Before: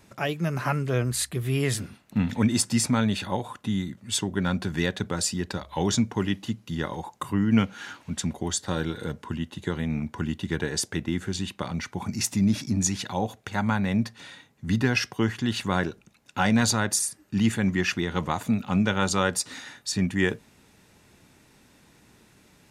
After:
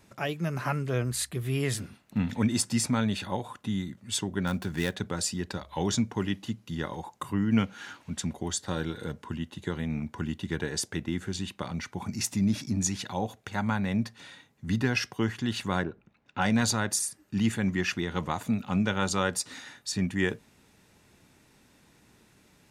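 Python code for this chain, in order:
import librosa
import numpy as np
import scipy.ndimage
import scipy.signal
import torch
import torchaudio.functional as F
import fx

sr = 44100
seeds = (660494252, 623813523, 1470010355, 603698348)

y = fx.dead_time(x, sr, dead_ms=0.068, at=(4.47, 4.95))
y = fx.lowpass(y, sr, hz=fx.line((15.82, 1500.0), (16.4, 3500.0)), slope=12, at=(15.82, 16.4), fade=0.02)
y = F.gain(torch.from_numpy(y), -3.5).numpy()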